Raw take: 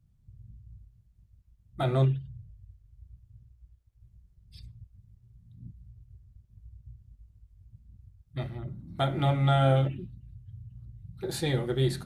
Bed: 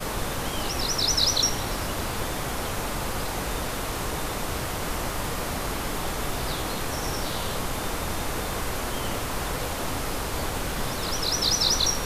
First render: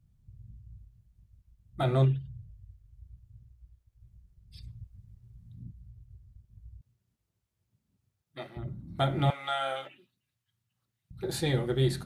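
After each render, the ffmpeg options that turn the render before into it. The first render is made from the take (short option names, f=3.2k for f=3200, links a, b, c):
-filter_complex "[0:a]asettb=1/sr,asplit=3[a][b][c];[a]atrim=end=6.814[d];[b]atrim=start=6.81:end=8.57,asetpts=PTS-STARTPTS,afade=t=in:d=0.004:c=qsin,afade=t=out:st=1.756:d=0.004:c=qsin,highpass=370[e];[c]atrim=start=8.566[f];[d][e]acrossfade=d=0.004:c1=hsin:c2=qsin[g];[g][f]acrossfade=d=0.004:c1=qsin:c2=hsin,asettb=1/sr,asplit=3[h][i][j];[h]atrim=end=9.304[k];[i]atrim=start=9.3:end=11.11,asetpts=PTS-STARTPTS,afade=t=in:d=0.004:c=qsin,afade=t=out:st=1.806:d=0.004:c=qsin,highpass=940[l];[j]atrim=start=11.106[m];[k][l]acrossfade=d=0.004:c1=hsin:c2=qsin[n];[n][m]acrossfade=d=0.004:c1=qsin:c2=hsin,asplit=3[o][p][q];[o]atrim=end=4.672[r];[p]atrim=start=4.668:end=5.632,asetpts=PTS-STARTPTS,volume=3dB[s];[q]atrim=start=5.628[t];[r][s]acrossfade=d=0.004:c1=hsin:c2=hsin[u];[u][t]acrossfade=d=0.004:c1=hsin:c2=hsin"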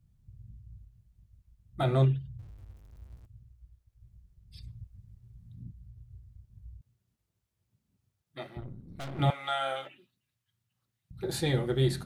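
-filter_complex "[0:a]asettb=1/sr,asplit=3[a][b][c];[a]atrim=end=2.394[d];[b]atrim=start=2.39:end=3.26,asetpts=PTS-STARTPTS,afade=t=in:d=0.004:c=qsin,afade=t=out:st=0.866:d=0.004:c=qsin,aeval=exprs='val(0)+0.5*0.002*sgn(val(0))':c=same[e];[c]atrim=start=3.256[f];[d][e]acrossfade=d=0.004:c1=hsin:c2=qsin[g];[g][f]acrossfade=d=0.004:c1=qsin:c2=hsin,asettb=1/sr,asplit=3[h][i][j];[h]atrim=end=5.944[k];[i]atrim=start=5.94:end=6.73,asetpts=PTS-STARTPTS,afade=t=in:d=0.004:c=qsin,afade=t=out:st=0.786:d=0.004:c=qsin,asplit=2[l][m];[m]adelay=33,volume=-7dB[n];[l][n]amix=inputs=2:normalize=0,atrim=end_sample=34839[o];[j]atrim=start=6.726[p];[k][o]acrossfade=d=0.004:c1=hsin:c2=qsin[q];[q][p]acrossfade=d=0.004:c1=qsin:c2=hsin,asettb=1/sr,asplit=3[r][s][t];[r]atrim=end=8.604[u];[s]atrim=start=8.6:end=9.19,asetpts=PTS-STARTPTS,afade=t=in:d=0.004:c=qsin,afade=t=out:st=0.586:d=0.004:c=qsin,aeval=exprs='(tanh(79.4*val(0)+0.75)-tanh(0.75))/79.4':c=same[v];[t]atrim=start=9.186[w];[u][v]acrossfade=d=0.004:c1=hsin:c2=qsin[x];[x][w]acrossfade=d=0.004:c1=qsin:c2=hsin"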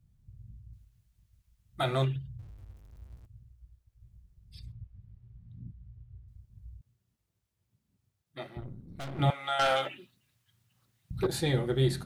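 -filter_complex "[0:a]asettb=1/sr,asplit=3[a][b][c];[a]atrim=end=0.734[d];[b]atrim=start=0.73:end=2.16,asetpts=PTS-STARTPTS,afade=t=in:d=0.004:c=qsin,afade=t=out:st=1.426:d=0.004:c=qsin,tiltshelf=f=750:g=-6[e];[c]atrim=start=2.156[f];[d][e]acrossfade=d=0.004:c1=hsin:c2=qsin[g];[g][f]acrossfade=d=0.004:c1=qsin:c2=hsin,asettb=1/sr,asplit=3[h][i][j];[h]atrim=end=4.724[k];[i]atrim=start=4.72:end=6.28,asetpts=PTS-STARTPTS,afade=t=in:d=0.004:c=qsin,afade=t=out:st=1.556:d=0.004:c=qsin,lowpass=3.2k[l];[j]atrim=start=6.276[m];[k][l]acrossfade=d=0.004:c1=hsin:c2=qsin[n];[n][m]acrossfade=d=0.004:c1=qsin:c2=hsin,asettb=1/sr,asplit=3[o][p][q];[o]atrim=end=9.594[r];[p]atrim=start=9.59:end=11.27,asetpts=PTS-STARTPTS,afade=t=in:d=0.004:c=qsin,afade=t=out:st=1.676:d=0.004:c=qsin,aeval=exprs='0.0841*sin(PI/2*2*val(0)/0.0841)':c=same[s];[q]atrim=start=11.266[t];[r][s]acrossfade=d=0.004:c1=hsin:c2=qsin[u];[u][t]acrossfade=d=0.004:c1=qsin:c2=hsin"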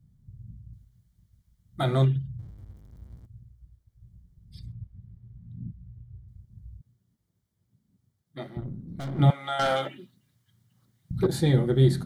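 -af "equalizer=f=190:w=0.7:g=10,bandreject=f=2.6k:w=5.1"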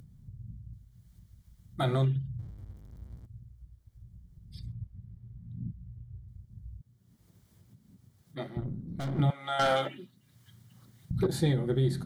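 -af "alimiter=limit=-18dB:level=0:latency=1:release=350,acompressor=mode=upward:threshold=-46dB:ratio=2.5"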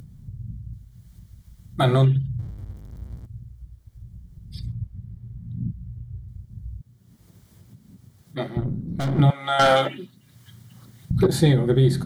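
-af "volume=9.5dB"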